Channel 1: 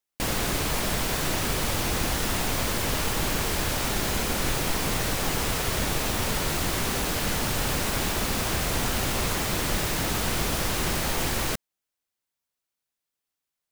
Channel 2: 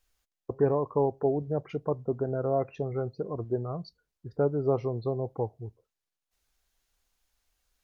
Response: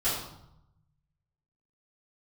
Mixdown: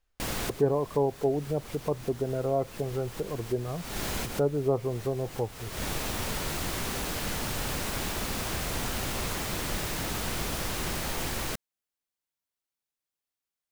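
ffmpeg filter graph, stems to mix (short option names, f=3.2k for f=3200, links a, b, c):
-filter_complex "[0:a]volume=-5.5dB[a];[1:a]aemphasis=mode=reproduction:type=75kf,volume=0dB,asplit=2[b][c];[c]apad=whole_len=604897[d];[a][d]sidechaincompress=threshold=-43dB:ratio=10:attack=16:release=251[e];[e][b]amix=inputs=2:normalize=0"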